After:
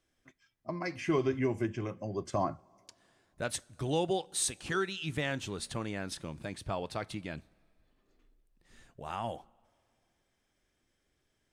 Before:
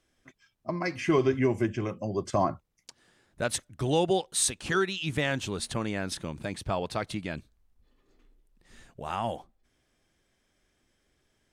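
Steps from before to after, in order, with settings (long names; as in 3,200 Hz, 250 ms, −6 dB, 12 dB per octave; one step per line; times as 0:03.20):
coupled-rooms reverb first 0.24 s, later 2.5 s, from −19 dB, DRR 17.5 dB
level −5.5 dB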